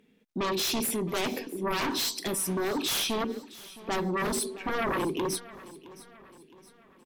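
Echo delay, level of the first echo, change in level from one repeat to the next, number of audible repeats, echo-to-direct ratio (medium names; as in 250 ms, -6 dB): 665 ms, -18.5 dB, -6.5 dB, 3, -17.5 dB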